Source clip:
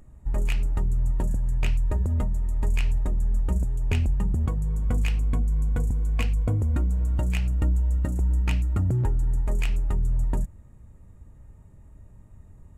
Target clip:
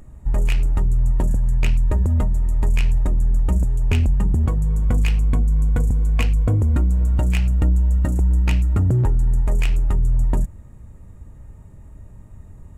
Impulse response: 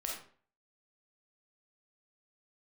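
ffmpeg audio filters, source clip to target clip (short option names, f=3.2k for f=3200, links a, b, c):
-af "asoftclip=type=tanh:threshold=-17.5dB,volume=7.5dB"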